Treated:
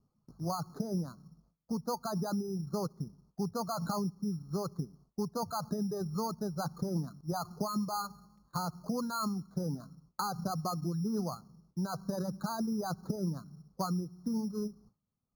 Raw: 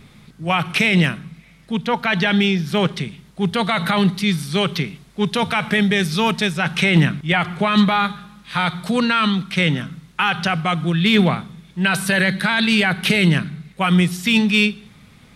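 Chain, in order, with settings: steep low-pass 1300 Hz 72 dB/oct; gate with hold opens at -35 dBFS; reverb removal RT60 1.2 s; compressor, threshold -25 dBFS, peak gain reduction 14 dB; careless resampling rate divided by 8×, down filtered, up hold; gain -6.5 dB

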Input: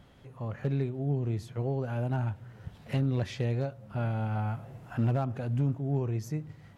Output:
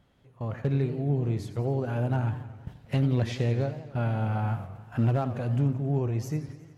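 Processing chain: gate -42 dBFS, range -11 dB; warbling echo 90 ms, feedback 64%, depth 190 cents, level -12.5 dB; gain +3 dB

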